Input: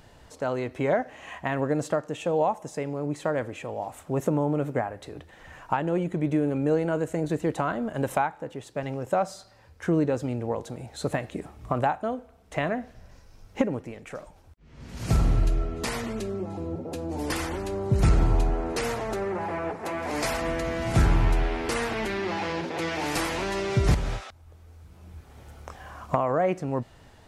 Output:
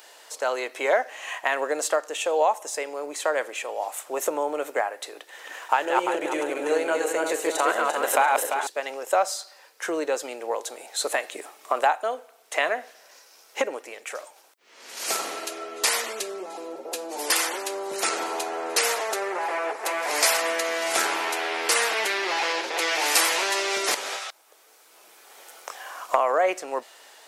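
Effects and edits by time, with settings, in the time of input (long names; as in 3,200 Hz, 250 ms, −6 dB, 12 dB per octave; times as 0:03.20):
0:05.17–0:08.67: feedback delay that plays each chunk backwards 172 ms, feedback 57%, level −2 dB
whole clip: high-pass filter 390 Hz 24 dB per octave; spectral tilt +3 dB per octave; level +5 dB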